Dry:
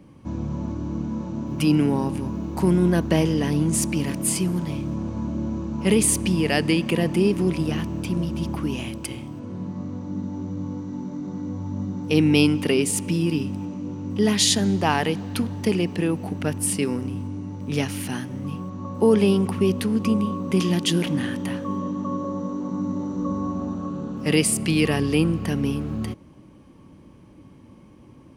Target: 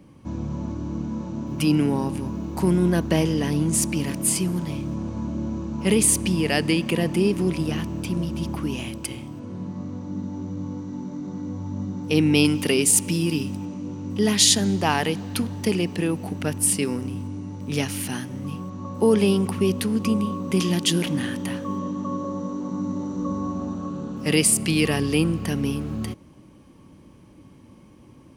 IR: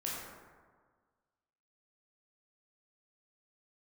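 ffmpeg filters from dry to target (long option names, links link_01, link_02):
-af "asetnsamples=nb_out_samples=441:pad=0,asendcmd='12.45 highshelf g 10.5;13.57 highshelf g 6',highshelf=frequency=3800:gain=3.5,volume=-1dB"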